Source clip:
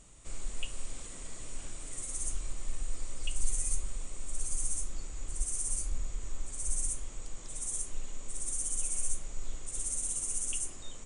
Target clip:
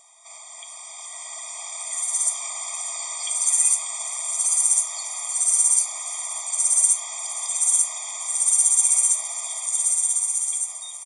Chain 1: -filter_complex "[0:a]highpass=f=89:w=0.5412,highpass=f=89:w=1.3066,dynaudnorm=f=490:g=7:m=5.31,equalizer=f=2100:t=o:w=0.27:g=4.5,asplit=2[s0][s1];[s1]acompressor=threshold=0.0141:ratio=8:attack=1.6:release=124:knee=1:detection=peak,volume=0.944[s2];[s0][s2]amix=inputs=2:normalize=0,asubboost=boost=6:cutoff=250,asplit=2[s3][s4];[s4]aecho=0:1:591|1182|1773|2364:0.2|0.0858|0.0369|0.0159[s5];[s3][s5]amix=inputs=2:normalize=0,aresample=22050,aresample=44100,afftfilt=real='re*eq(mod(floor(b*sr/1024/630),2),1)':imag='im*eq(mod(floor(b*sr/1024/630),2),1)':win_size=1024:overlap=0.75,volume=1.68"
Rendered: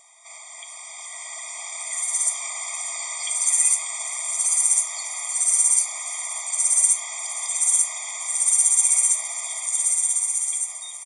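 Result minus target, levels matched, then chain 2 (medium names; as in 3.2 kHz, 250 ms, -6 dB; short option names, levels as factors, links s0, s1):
2 kHz band +5.5 dB
-filter_complex "[0:a]highpass=f=89:w=0.5412,highpass=f=89:w=1.3066,dynaudnorm=f=490:g=7:m=5.31,equalizer=f=2100:t=o:w=0.27:g=-4.5,asplit=2[s0][s1];[s1]acompressor=threshold=0.0141:ratio=8:attack=1.6:release=124:knee=1:detection=peak,volume=0.944[s2];[s0][s2]amix=inputs=2:normalize=0,asubboost=boost=6:cutoff=250,asplit=2[s3][s4];[s4]aecho=0:1:591|1182|1773|2364:0.2|0.0858|0.0369|0.0159[s5];[s3][s5]amix=inputs=2:normalize=0,aresample=22050,aresample=44100,afftfilt=real='re*eq(mod(floor(b*sr/1024/630),2),1)':imag='im*eq(mod(floor(b*sr/1024/630),2),1)':win_size=1024:overlap=0.75,volume=1.68"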